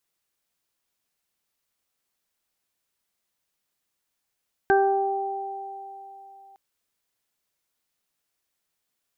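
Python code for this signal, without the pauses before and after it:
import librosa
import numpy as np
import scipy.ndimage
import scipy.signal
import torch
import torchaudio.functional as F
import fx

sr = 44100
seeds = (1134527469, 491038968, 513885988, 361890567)

y = fx.additive(sr, length_s=1.86, hz=392.0, level_db=-17.5, upper_db=(-1.0, -18, -3.0), decay_s=2.35, upper_decays_s=(3.72, 1.03, 0.47))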